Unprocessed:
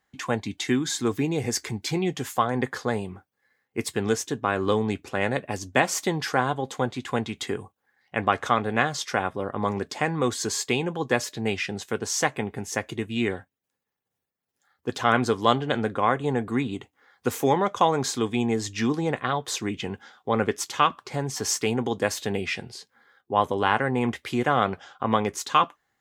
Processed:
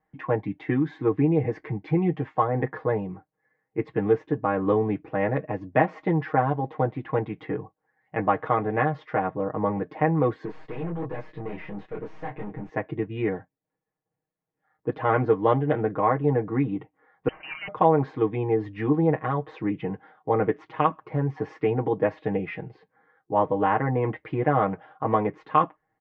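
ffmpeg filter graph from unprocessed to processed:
-filter_complex "[0:a]asettb=1/sr,asplit=3[s0][s1][s2];[s0]atrim=end=10.454[s3];[s1]atrim=start=10.45:end=12.69,asetpts=PTS-STARTPTS,afade=t=in:d=0.004:c=qsin,afade=t=out:st=2.236:d=0.004:c=qsin,highshelf=f=5900:g=11,asplit=2[s4][s5];[s5]adelay=24,volume=0.596[s6];[s4][s6]amix=inputs=2:normalize=0,atrim=end_sample=98784,aeval=exprs='(tanh(39.8*val(0)+0.25)-tanh(0.25))/39.8':c=same[s7];[s2]atrim=start=12.686[s8];[s3][s7]acrossfade=d=0.004:c1=hsin:c2=qsin[s9];[s9][s8]acrossfade=d=0.004:c1=qsin:c2=hsin,asettb=1/sr,asplit=3[s10][s11][s12];[s10]atrim=end=17.284[s13];[s11]atrim=start=17.28:end=17.68,asetpts=PTS-STARTPTS,afade=t=in:d=0.004:c=qsin,afade=t=out:st=0.396:d=0.004:c=qsin,asoftclip=type=hard:threshold=0.211,acrossover=split=390|890[s14][s15][s16];[s14]acompressor=threshold=0.02:ratio=4[s17];[s15]acompressor=threshold=0.0178:ratio=4[s18];[s16]acompressor=threshold=0.0355:ratio=4[s19];[s17][s18][s19]amix=inputs=3:normalize=0,lowpass=f=2700:t=q:w=0.5098,lowpass=f=2700:t=q:w=0.6013,lowpass=f=2700:t=q:w=0.9,lowpass=f=2700:t=q:w=2.563,afreqshift=-3200[s20];[s12]atrim=start=17.676[s21];[s13][s20]acrossfade=d=0.004:c1=hsin:c2=qsin[s22];[s22][s21]acrossfade=d=0.004:c1=qsin:c2=hsin,lowpass=f=1800:w=0.5412,lowpass=f=1800:w=1.3066,equalizer=f=1400:w=2:g=-8,aecho=1:1:6.4:0.96"

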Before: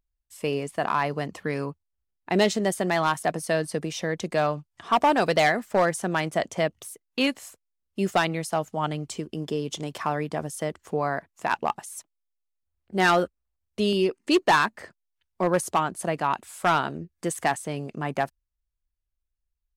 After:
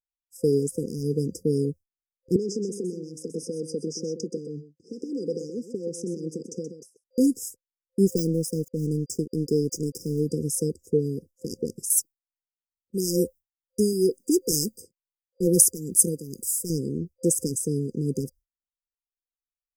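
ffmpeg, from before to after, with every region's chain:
-filter_complex "[0:a]asettb=1/sr,asplit=3[s0][s1][s2];[s0]atrim=end=2.364[s3];[s1]atrim=start=2.36:end=7.04,asetpts=PTS-STARTPTS,afade=t=in:d=0.004:c=qsin,afade=t=out:st=4.676:d=0.004:c=qsin,acompressor=threshold=0.0398:ratio=6:attack=3.2:release=140:knee=1:detection=peak,highpass=210,lowpass=4400,aecho=1:1:127:0.316,atrim=end_sample=206388[s4];[s2]atrim=start=7.036[s5];[s3][s4]acrossfade=d=0.004:c1=hsin:c2=qsin[s6];[s6][s5]acrossfade=d=0.004:c1=qsin:c2=hsin,asettb=1/sr,asplit=3[s7][s8][s9];[s7]atrim=end=8.054[s10];[s8]atrim=start=8.05:end=10.26,asetpts=PTS-STARTPTS,afade=t=in:d=0.004:c=qsin,afade=t=out:st=2.206:d=0.004:c=qsin,deesser=0.65,aeval=exprs='sgn(val(0))*max(abs(val(0))-0.00422,0)':c=same[s11];[s9]atrim=start=10.256[s12];[s10][s11]acrossfade=d=0.004:c1=hsin:c2=qsin[s13];[s13][s12]acrossfade=d=0.004:c1=qsin:c2=hsin,asettb=1/sr,asplit=3[s14][s15][s16];[s14]atrim=end=11.904[s17];[s15]atrim=start=11.9:end=16.7,asetpts=PTS-STARTPTS,afade=t=in:d=0.004:c=qsin,afade=t=out:st=4.796:d=0.004:c=qsin,aemphasis=mode=production:type=50kf,tremolo=f=2.2:d=0.64[s18];[s16]atrim=start=16.696[s19];[s17][s18]acrossfade=d=0.004:c1=hsin:c2=qsin[s20];[s20][s19]acrossfade=d=0.004:c1=qsin:c2=hsin,agate=range=0.0224:threshold=0.0112:ratio=3:detection=peak,afftfilt=real='re*(1-between(b*sr/4096,520,4800))':imag='im*(1-between(b*sr/4096,520,4800))':win_size=4096:overlap=0.75,highshelf=f=8300:g=6.5,volume=2"

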